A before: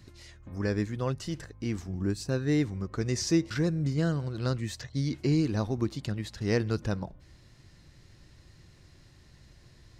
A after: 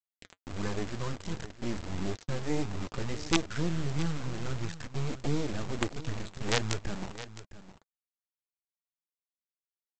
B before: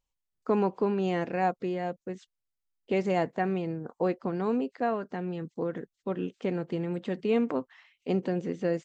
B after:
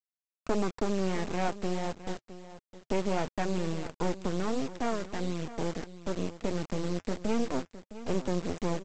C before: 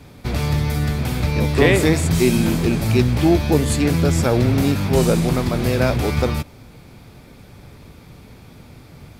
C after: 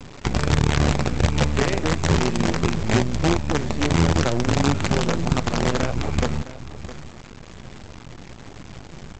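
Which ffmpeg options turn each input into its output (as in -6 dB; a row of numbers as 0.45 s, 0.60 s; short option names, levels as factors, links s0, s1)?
-filter_complex "[0:a]bass=f=250:g=4,treble=f=4000:g=-15,bandreject=f=5900:w=24,asplit=2[s0][s1];[s1]acompressor=threshold=0.0355:ratio=8,volume=0.944[s2];[s0][s2]amix=inputs=2:normalize=0,alimiter=limit=0.447:level=0:latency=1:release=468,aresample=16000,acrusher=bits=3:dc=4:mix=0:aa=0.000001,aresample=44100,flanger=delay=0.8:depth=4.7:regen=-58:speed=1.5:shape=sinusoidal,aecho=1:1:662:0.188"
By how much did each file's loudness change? -4.5 LU, -3.0 LU, -4.0 LU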